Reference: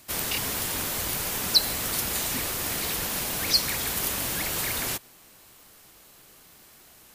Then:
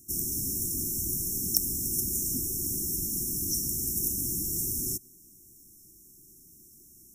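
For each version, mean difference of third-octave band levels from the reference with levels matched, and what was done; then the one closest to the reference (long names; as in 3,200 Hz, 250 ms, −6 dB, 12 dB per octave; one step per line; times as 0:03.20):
16.5 dB: wrap-around overflow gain 8.5 dB
linear-phase brick-wall band-stop 400–5,300 Hz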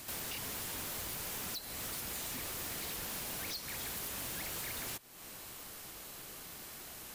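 6.0 dB: downward compressor 5 to 1, threshold −44 dBFS, peak gain reduction 25.5 dB
wave folding −39 dBFS
level +4.5 dB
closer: second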